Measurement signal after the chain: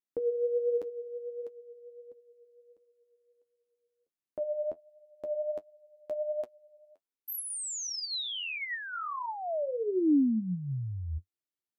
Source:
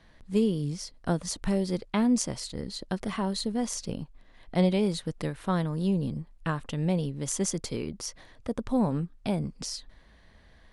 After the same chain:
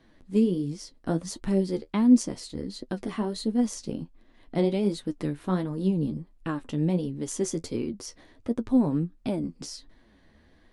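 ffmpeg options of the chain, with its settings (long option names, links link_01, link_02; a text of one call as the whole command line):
ffmpeg -i in.wav -af "flanger=delay=7.7:depth=6.3:regen=39:speed=1.4:shape=triangular,equalizer=frequency=300:width_type=o:width=0.97:gain=11" out.wav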